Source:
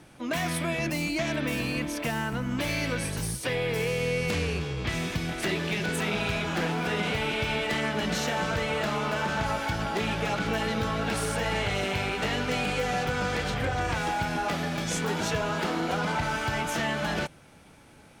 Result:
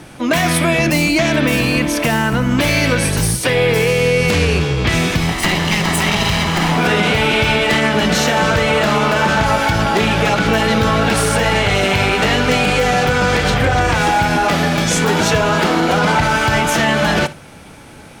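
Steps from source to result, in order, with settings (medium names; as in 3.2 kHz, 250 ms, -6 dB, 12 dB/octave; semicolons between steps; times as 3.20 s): 5.20–6.78 s: comb filter that takes the minimum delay 1 ms; on a send: flutter echo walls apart 10.8 m, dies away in 0.21 s; on the sum: loudness maximiser +19.5 dB; trim -4.5 dB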